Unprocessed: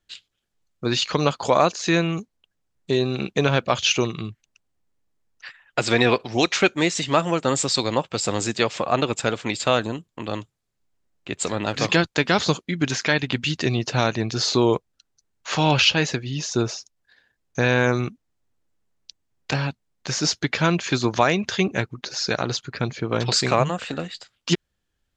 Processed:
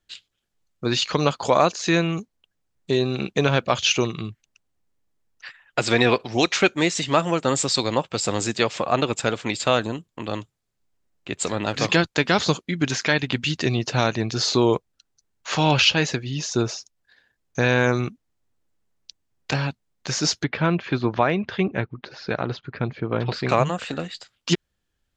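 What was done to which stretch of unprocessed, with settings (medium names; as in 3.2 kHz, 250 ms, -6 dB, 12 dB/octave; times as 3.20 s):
20.44–23.49 s: distance through air 350 m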